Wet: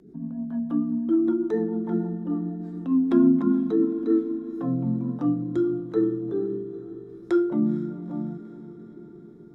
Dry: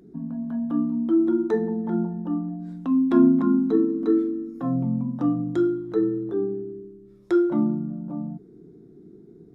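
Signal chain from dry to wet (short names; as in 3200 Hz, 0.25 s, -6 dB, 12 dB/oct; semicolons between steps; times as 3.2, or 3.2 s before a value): rotary speaker horn 6.7 Hz, later 0.9 Hz, at 4.03; diffused feedback echo 0.463 s, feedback 61%, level -15 dB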